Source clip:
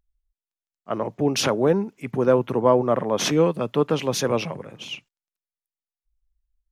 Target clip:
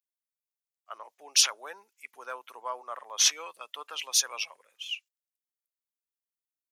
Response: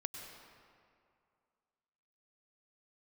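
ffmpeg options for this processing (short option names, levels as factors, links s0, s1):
-af "afftdn=nr=12:nf=-34,highpass=980,aderivative,volume=2.51"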